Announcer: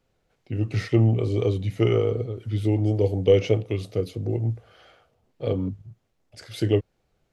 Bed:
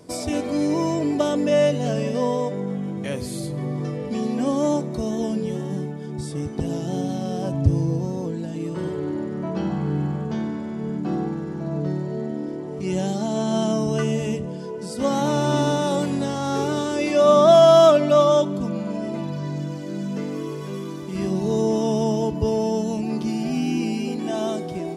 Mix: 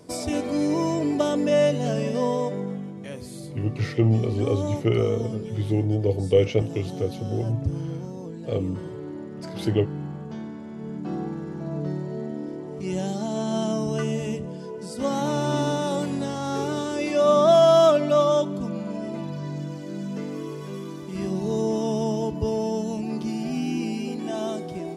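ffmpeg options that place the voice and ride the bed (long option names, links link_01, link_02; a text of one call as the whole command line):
ffmpeg -i stem1.wav -i stem2.wav -filter_complex "[0:a]adelay=3050,volume=-1dB[link_01];[1:a]volume=3.5dB,afade=type=out:start_time=2.56:duration=0.37:silence=0.446684,afade=type=in:start_time=10.56:duration=0.91:silence=0.562341[link_02];[link_01][link_02]amix=inputs=2:normalize=0" out.wav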